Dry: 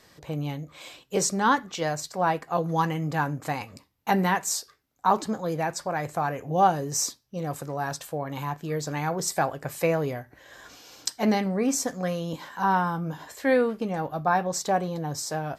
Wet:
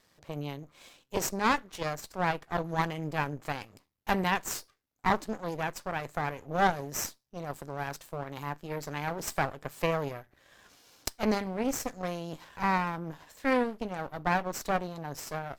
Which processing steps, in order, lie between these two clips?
half-wave rectifier; added harmonics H 3 -17 dB, 6 -20 dB, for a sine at -6.5 dBFS; gain -1.5 dB

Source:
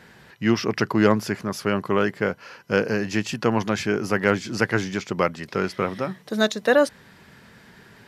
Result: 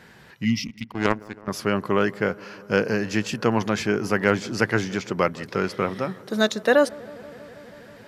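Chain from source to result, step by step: 0.67–1.48 power-law curve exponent 2; 0.45–0.87 spectral gain 290–1900 Hz -29 dB; dark delay 0.161 s, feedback 83%, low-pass 1300 Hz, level -22.5 dB

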